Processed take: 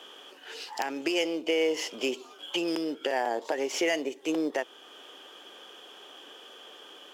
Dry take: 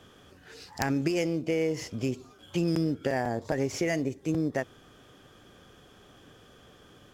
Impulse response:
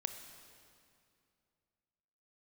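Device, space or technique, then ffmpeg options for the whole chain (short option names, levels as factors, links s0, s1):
laptop speaker: -af "highpass=f=340:w=0.5412,highpass=f=340:w=1.3066,equalizer=f=900:t=o:w=0.33:g=6,equalizer=f=3000:t=o:w=0.4:g=11.5,alimiter=limit=0.0841:level=0:latency=1:release=405,volume=1.68"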